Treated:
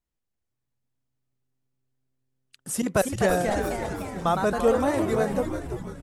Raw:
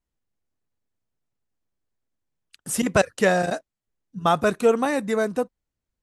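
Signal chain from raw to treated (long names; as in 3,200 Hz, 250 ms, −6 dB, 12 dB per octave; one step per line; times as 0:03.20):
dynamic equaliser 2,600 Hz, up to −6 dB, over −37 dBFS, Q 0.81
delay with pitch and tempo change per echo 575 ms, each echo +2 semitones, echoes 3, each echo −6 dB
echo with shifted repeats 338 ms, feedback 53%, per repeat −130 Hz, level −7.5 dB
level −3 dB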